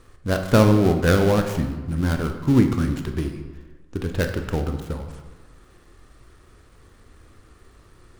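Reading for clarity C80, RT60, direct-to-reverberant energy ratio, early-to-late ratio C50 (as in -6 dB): 9.5 dB, 1.3 s, 5.0 dB, 7.5 dB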